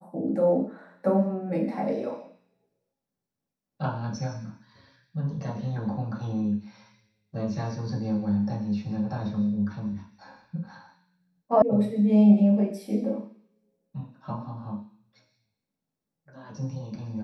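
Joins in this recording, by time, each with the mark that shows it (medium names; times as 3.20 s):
11.62 s: sound stops dead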